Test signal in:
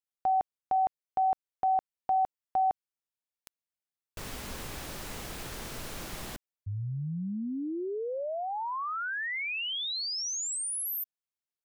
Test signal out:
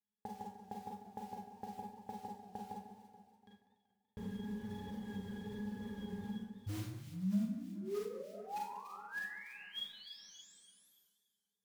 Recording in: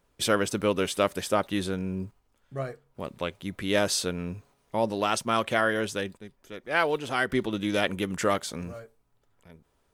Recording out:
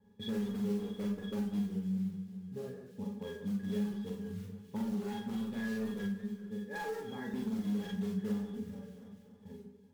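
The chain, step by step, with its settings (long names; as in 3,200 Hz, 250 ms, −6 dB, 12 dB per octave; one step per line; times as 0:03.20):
resonances in every octave G#, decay 0.13 s
noise that follows the level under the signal 14 dB
in parallel at −4.5 dB: wrap-around overflow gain 32.5 dB
on the sum: reverb reduction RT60 0.88 s
drawn EQ curve 120 Hz 0 dB, 190 Hz +13 dB, 280 Hz +6 dB, 640 Hz +1 dB, 4,600 Hz −1 dB, 9,000 Hz −4 dB
delay that swaps between a low-pass and a high-pass 144 ms, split 2,000 Hz, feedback 58%, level −12 dB
four-comb reverb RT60 0.35 s, combs from 32 ms, DRR −1.5 dB
pitch vibrato 1.1 Hz 17 cents
downward compressor 2 to 1, threshold −53 dBFS
high-shelf EQ 9,600 Hz −5 dB
feedback echo with a swinging delay time 191 ms, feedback 54%, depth 167 cents, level −16 dB
level +4.5 dB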